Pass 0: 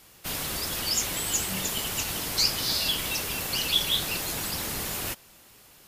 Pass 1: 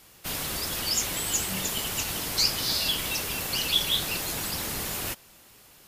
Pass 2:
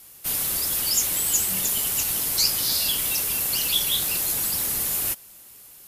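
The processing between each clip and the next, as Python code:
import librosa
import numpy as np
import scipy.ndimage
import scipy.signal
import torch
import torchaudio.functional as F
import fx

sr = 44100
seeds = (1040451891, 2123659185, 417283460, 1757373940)

y1 = x
y2 = fx.peak_eq(y1, sr, hz=12000.0, db=14.0, octaves=1.3)
y2 = y2 * librosa.db_to_amplitude(-2.5)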